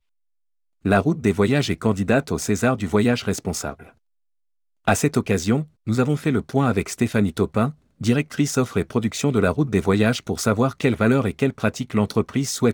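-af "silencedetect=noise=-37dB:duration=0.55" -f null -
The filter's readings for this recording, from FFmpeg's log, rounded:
silence_start: 0.00
silence_end: 0.85 | silence_duration: 0.85
silence_start: 3.89
silence_end: 4.87 | silence_duration: 0.98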